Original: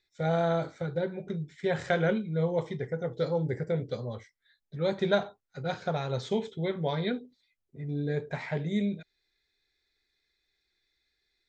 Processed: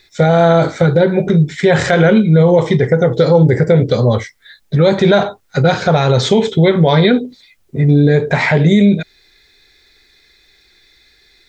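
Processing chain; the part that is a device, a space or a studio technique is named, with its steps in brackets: loud club master (compression 1.5:1, threshold -37 dBFS, peak gain reduction 6.5 dB; hard clipper -19 dBFS, distortion -48 dB; loudness maximiser +27.5 dB); trim -1 dB

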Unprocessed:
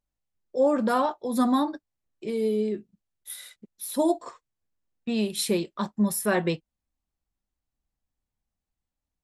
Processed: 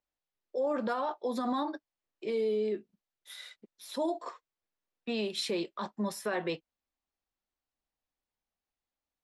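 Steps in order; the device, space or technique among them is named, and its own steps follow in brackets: DJ mixer with the lows and highs turned down (three-band isolator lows -14 dB, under 300 Hz, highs -21 dB, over 6.2 kHz; peak limiter -24 dBFS, peak gain reduction 11.5 dB)

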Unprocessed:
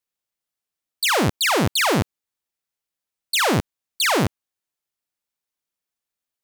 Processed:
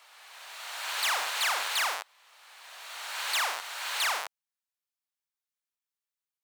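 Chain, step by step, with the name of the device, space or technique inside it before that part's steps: ghost voice (reverse; reverberation RT60 2.4 s, pre-delay 22 ms, DRR 2 dB; reverse; high-pass 790 Hz 24 dB/octave); trim -9 dB

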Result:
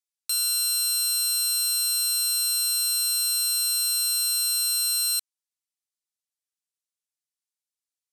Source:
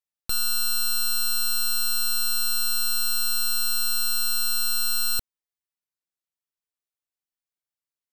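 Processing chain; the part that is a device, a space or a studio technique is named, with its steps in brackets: piezo pickup straight into a mixer (low-pass 8.8 kHz 12 dB/octave; differentiator); trim +6 dB

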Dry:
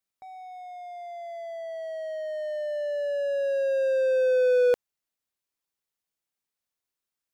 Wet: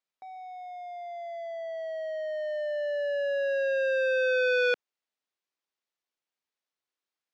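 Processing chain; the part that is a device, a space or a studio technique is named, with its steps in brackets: public-address speaker with an overloaded transformer (transformer saturation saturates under 1.5 kHz; band-pass 260–5000 Hz)

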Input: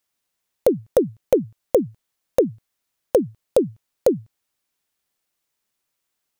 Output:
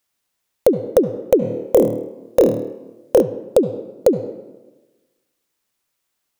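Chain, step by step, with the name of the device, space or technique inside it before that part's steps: filtered reverb send (on a send at -11.5 dB: high-pass 210 Hz 12 dB/octave + low-pass 4.3 kHz 12 dB/octave + reverberation RT60 1.2 s, pre-delay 65 ms); 1.39–3.22 s: on the sum: flutter echo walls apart 4.5 m, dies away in 0.47 s; trim +3 dB

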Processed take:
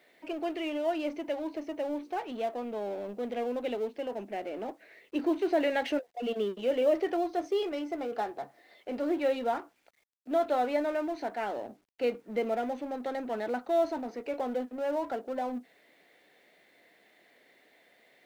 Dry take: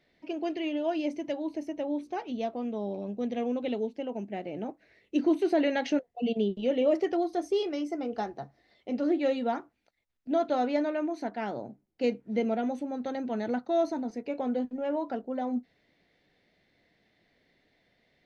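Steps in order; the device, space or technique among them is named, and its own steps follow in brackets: phone line with mismatched companding (band-pass 390–3500 Hz; companding laws mixed up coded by mu)

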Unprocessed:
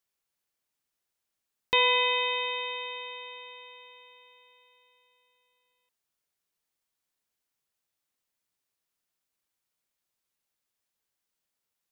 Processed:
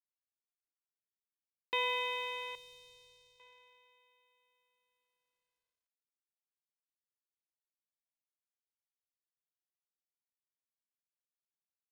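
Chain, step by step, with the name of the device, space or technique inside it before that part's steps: phone line with mismatched companding (band-pass 300–3500 Hz; companding laws mixed up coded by A); 2.55–3.40 s: FFT filter 220 Hz 0 dB, 1.2 kHz -20 dB, 2 kHz -17 dB, 4.5 kHz 0 dB; trim -8.5 dB

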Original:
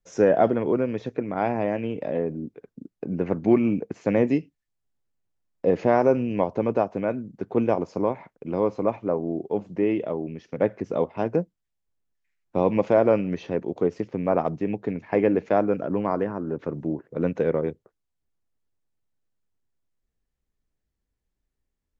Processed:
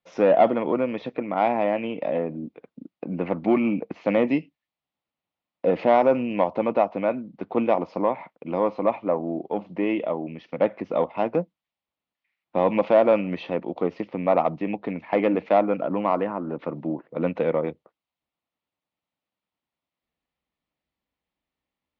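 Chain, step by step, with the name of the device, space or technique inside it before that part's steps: overdrive pedal into a guitar cabinet (overdrive pedal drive 11 dB, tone 3.8 kHz, clips at -7 dBFS; cabinet simulation 89–4100 Hz, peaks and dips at 110 Hz -9 dB, 410 Hz -9 dB, 1.6 kHz -10 dB); trim +2 dB

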